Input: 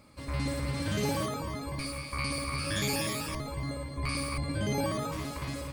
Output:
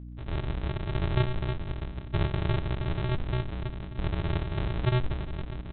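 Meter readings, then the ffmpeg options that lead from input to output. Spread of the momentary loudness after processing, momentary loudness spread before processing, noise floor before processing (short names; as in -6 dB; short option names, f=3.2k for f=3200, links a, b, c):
8 LU, 6 LU, -41 dBFS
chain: -af "afwtdn=0.0126,lowpass=f=1.2k:t=q:w=6.5,aresample=8000,acrusher=samples=32:mix=1:aa=0.000001,aresample=44100,aeval=exprs='val(0)+0.01*(sin(2*PI*60*n/s)+sin(2*PI*2*60*n/s)/2+sin(2*PI*3*60*n/s)/3+sin(2*PI*4*60*n/s)/4+sin(2*PI*5*60*n/s)/5)':c=same"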